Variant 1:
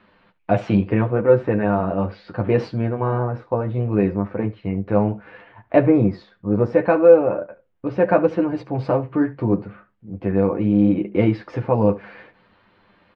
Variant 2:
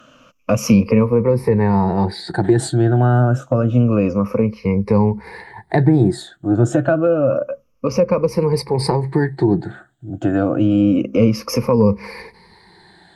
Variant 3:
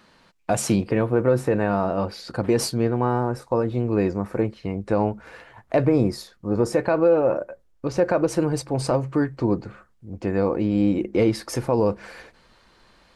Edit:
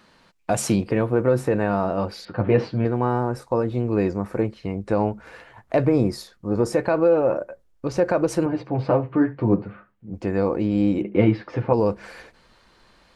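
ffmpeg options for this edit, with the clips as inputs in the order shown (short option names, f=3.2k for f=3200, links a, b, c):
-filter_complex "[0:a]asplit=3[a][b][c];[2:a]asplit=4[d][e][f][g];[d]atrim=end=2.252[h];[a]atrim=start=2.248:end=2.852[i];[e]atrim=start=2.848:end=8.462[j];[b]atrim=start=8.458:end=10.142[k];[f]atrim=start=10.138:end=11.022[l];[c]atrim=start=11.018:end=11.732[m];[g]atrim=start=11.728[n];[h][i]acrossfade=d=0.004:c1=hsin:c2=hsin[o];[o][j]acrossfade=d=0.004:c1=hsin:c2=hsin[p];[p][k]acrossfade=d=0.004:c1=hsin:c2=hsin[q];[q][l]acrossfade=d=0.004:c1=hsin:c2=hsin[r];[r][m]acrossfade=d=0.004:c1=hsin:c2=hsin[s];[s][n]acrossfade=d=0.004:c1=hsin:c2=hsin"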